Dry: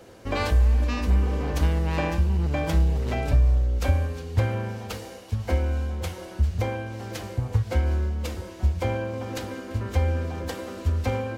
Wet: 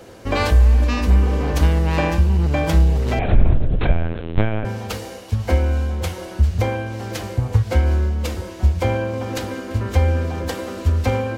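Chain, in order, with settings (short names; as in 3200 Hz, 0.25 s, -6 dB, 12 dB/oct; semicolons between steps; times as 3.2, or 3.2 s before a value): 3.19–4.65 LPC vocoder at 8 kHz pitch kept; gain +6.5 dB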